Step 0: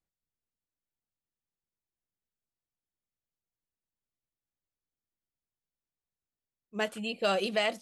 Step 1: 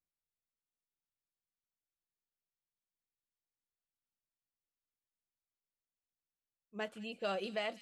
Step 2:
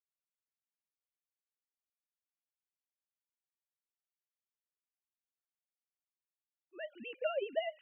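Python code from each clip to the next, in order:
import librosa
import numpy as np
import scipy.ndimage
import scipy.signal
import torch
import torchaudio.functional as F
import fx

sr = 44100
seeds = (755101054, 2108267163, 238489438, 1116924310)

y1 = fx.high_shelf(x, sr, hz=5700.0, db=-10.0)
y1 = fx.echo_wet_highpass(y1, sr, ms=199, feedback_pct=60, hz=3900.0, wet_db=-9.0)
y1 = y1 * 10.0 ** (-8.5 / 20.0)
y2 = fx.sine_speech(y1, sr)
y2 = y2 * 10.0 ** (1.0 / 20.0)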